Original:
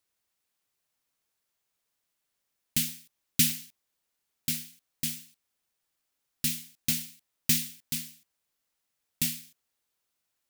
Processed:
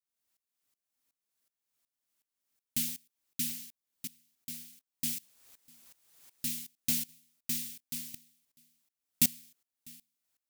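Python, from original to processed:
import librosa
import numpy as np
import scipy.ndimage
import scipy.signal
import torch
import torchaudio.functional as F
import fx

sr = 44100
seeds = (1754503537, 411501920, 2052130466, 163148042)

p1 = fx.peak_eq(x, sr, hz=260.0, db=7.5, octaves=0.32)
p2 = fx.quant_dither(p1, sr, seeds[0], bits=10, dither='triangular', at=(5.21, 6.45), fade=0.02)
p3 = fx.high_shelf(p2, sr, hz=4900.0, db=6.0)
p4 = p3 + fx.echo_single(p3, sr, ms=649, db=-21.5, dry=0)
y = fx.tremolo_decay(p4, sr, direction='swelling', hz=2.7, depth_db=20)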